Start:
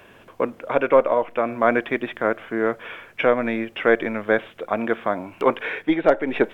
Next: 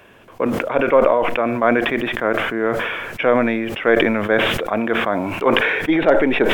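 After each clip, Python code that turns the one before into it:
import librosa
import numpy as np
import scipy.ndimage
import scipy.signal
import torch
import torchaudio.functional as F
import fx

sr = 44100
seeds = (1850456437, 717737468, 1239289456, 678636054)

y = fx.sustainer(x, sr, db_per_s=30.0)
y = y * librosa.db_to_amplitude(1.0)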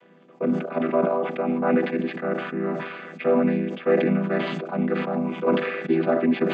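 y = fx.chord_vocoder(x, sr, chord='minor triad', root=52)
y = y * librosa.db_to_amplitude(-4.5)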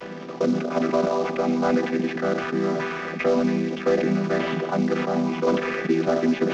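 y = fx.cvsd(x, sr, bps=32000)
y = y + 10.0 ** (-13.5 / 20.0) * np.pad(y, (int(171 * sr / 1000.0), 0))[:len(y)]
y = fx.band_squash(y, sr, depth_pct=70)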